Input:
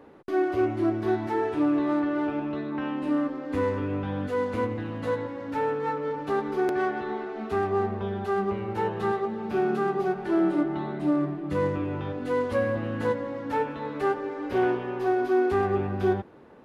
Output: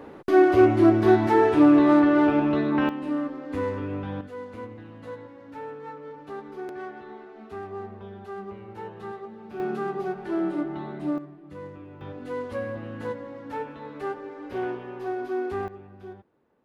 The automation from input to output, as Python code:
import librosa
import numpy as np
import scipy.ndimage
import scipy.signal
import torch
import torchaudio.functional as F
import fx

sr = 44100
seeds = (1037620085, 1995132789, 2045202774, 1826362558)

y = fx.gain(x, sr, db=fx.steps((0.0, 8.0), (2.89, -2.0), (4.21, -10.5), (9.6, -3.5), (11.18, -14.0), (12.01, -6.0), (15.68, -18.0)))